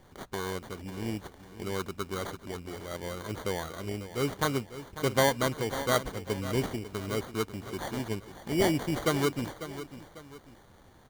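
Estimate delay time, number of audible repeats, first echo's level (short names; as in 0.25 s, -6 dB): 0.547 s, 2, -13.0 dB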